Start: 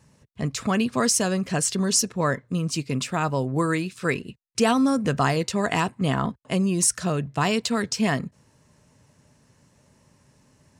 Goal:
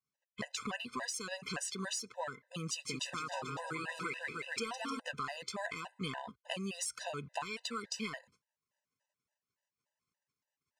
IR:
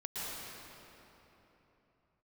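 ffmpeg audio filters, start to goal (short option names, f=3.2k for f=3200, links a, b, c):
-filter_complex "[0:a]asplit=2[a][b];[b]highpass=f=720:p=1,volume=9dB,asoftclip=type=tanh:threshold=-7.5dB[c];[a][c]amix=inputs=2:normalize=0,lowpass=f=1.6k:p=1,volume=-6dB,tiltshelf=f=1.2k:g=-8,asettb=1/sr,asplit=3[d][e][f];[d]atrim=end=2.694[g];[e]atrim=start=2.69:end=5,asetpts=PTS-STARTPTS,afade=t=in:d=0.004:c=qsin,afade=t=out:st=2.306:d=0.004:c=qsin,aecho=1:1:160|304|433.6|550.2|655.2:0.631|0.398|0.251|0.158|0.1,atrim=end_sample=101871[h];[f]atrim=start=4.996[i];[g][h]acrossfade=d=0.004:c1=hsin:c2=qsin[j];[j][i]acrossfade=d=0.004:c1=qsin:c2=hsin,acompressor=threshold=-35dB:ratio=16,agate=range=-35dB:threshold=-58dB:ratio=16:detection=peak,afftfilt=real='re*gt(sin(2*PI*3.5*pts/sr)*(1-2*mod(floor(b*sr/1024/510),2)),0)':imag='im*gt(sin(2*PI*3.5*pts/sr)*(1-2*mod(floor(b*sr/1024/510),2)),0)':win_size=1024:overlap=0.75,volume=2dB"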